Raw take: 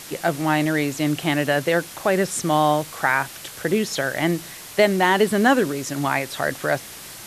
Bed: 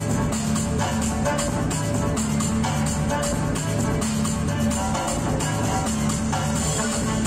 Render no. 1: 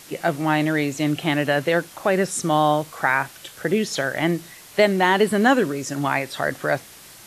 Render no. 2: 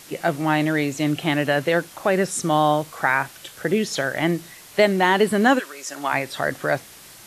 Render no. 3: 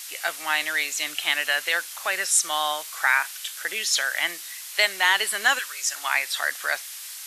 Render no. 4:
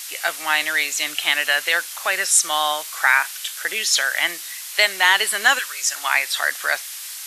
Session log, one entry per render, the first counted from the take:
noise print and reduce 6 dB
5.58–6.12 HPF 1400 Hz -> 360 Hz
HPF 1300 Hz 12 dB/oct; high shelf 2400 Hz +8.5 dB
gain +4.5 dB; limiter -2 dBFS, peak gain reduction 1 dB

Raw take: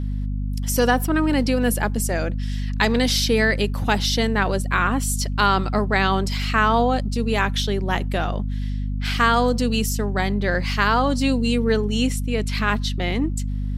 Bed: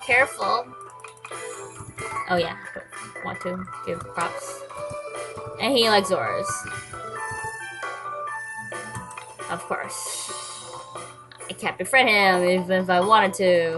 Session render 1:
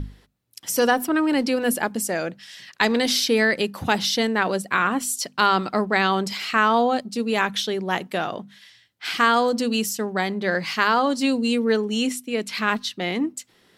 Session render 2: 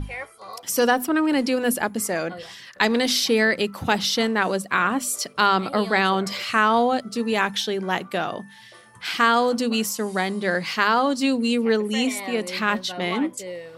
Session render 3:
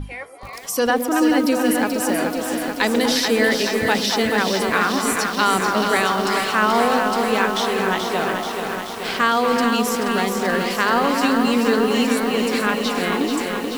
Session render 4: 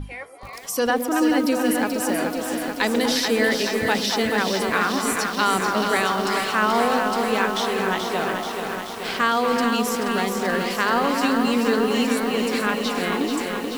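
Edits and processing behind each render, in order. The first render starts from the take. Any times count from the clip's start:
notches 50/100/150/200/250 Hz
add bed -16 dB
delay with a stepping band-pass 0.119 s, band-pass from 340 Hz, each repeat 1.4 oct, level -0.5 dB; lo-fi delay 0.432 s, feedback 80%, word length 6-bit, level -5.5 dB
gain -2.5 dB

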